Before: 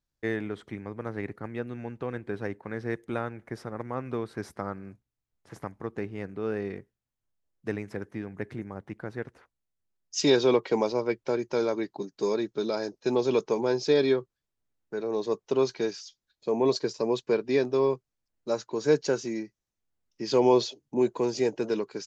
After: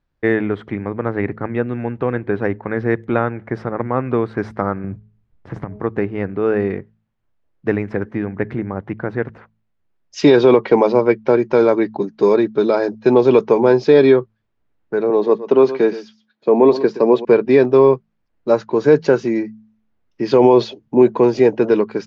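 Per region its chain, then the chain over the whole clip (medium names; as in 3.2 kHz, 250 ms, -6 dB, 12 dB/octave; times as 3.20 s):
4.84–5.80 s: de-hum 208.8 Hz, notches 3 + compression, threshold -41 dBFS + bass shelf 290 Hz +11 dB
15.10–17.25 s: high-pass 160 Hz 24 dB/octave + treble shelf 4.8 kHz -7 dB + delay 120 ms -15 dB
whole clip: low-pass 2.3 kHz 12 dB/octave; de-hum 54.44 Hz, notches 4; loudness maximiser +15 dB; trim -1 dB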